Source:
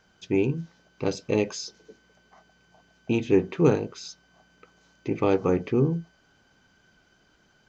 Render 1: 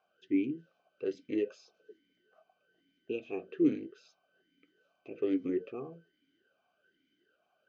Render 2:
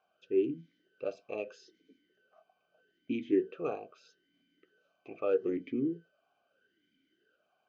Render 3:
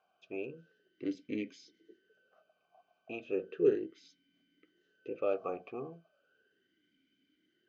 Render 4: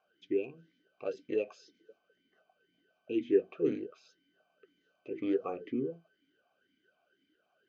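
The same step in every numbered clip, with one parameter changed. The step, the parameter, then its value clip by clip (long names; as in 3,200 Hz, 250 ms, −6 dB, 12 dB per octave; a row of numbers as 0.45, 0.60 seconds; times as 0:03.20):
formant filter swept between two vowels, speed: 1.2, 0.79, 0.35, 2 Hertz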